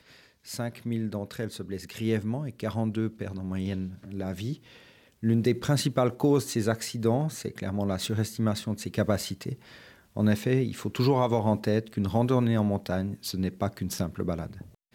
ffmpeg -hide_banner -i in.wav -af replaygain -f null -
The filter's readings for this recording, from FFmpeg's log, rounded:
track_gain = +8.5 dB
track_peak = 0.221